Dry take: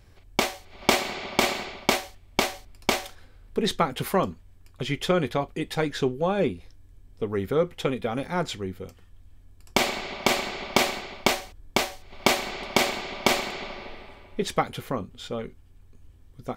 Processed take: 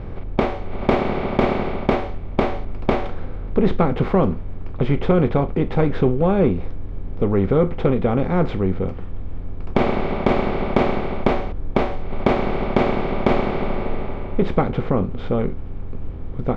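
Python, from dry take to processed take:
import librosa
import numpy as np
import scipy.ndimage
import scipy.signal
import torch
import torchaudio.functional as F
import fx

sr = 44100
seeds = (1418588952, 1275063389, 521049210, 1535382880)

y = fx.bin_compress(x, sr, power=0.6)
y = scipy.signal.sosfilt(scipy.signal.butter(2, 2600.0, 'lowpass', fs=sr, output='sos'), y)
y = fx.tilt_eq(y, sr, slope=-3.5)
y = 10.0 ** (-3.0 / 20.0) * np.tanh(y / 10.0 ** (-3.0 / 20.0))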